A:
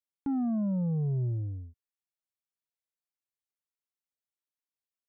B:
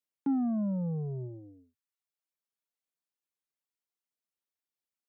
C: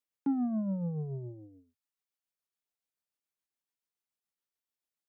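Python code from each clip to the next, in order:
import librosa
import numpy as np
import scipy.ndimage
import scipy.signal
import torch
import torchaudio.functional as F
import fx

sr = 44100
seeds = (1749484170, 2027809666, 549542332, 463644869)

y1 = scipy.signal.sosfilt(scipy.signal.bessel(8, 230.0, 'highpass', norm='mag', fs=sr, output='sos'), x)
y1 = fx.dereverb_blind(y1, sr, rt60_s=0.69)
y1 = fx.low_shelf(y1, sr, hz=360.0, db=7.0)
y2 = y1 * (1.0 - 0.37 / 2.0 + 0.37 / 2.0 * np.cos(2.0 * np.pi * 7.0 * (np.arange(len(y1)) / sr)))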